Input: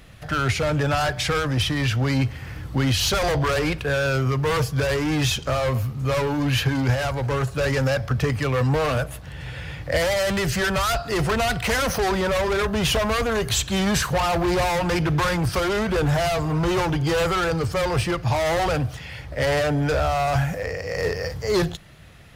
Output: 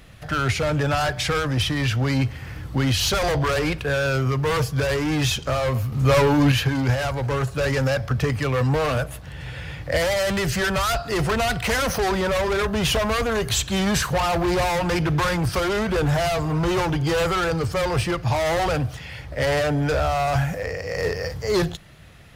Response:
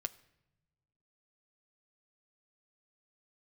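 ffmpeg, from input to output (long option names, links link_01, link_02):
-filter_complex "[0:a]asettb=1/sr,asplit=3[link_01][link_02][link_03];[link_01]atrim=end=5.924[link_04];[link_02]atrim=start=5.92:end=6.52,asetpts=PTS-STARTPTS,afade=type=in:duration=0.004:curve=qsin,afade=type=out:start_time=0.596:duration=0.004:curve=qsin,acontrast=56[link_05];[link_03]atrim=start=6.516[link_06];[link_04][link_05]acrossfade=duration=0.004:curve1=hsin:curve2=qsin[link_07];[link_07][link_06]acrossfade=duration=0.004:curve1=qsin:curve2=hsin"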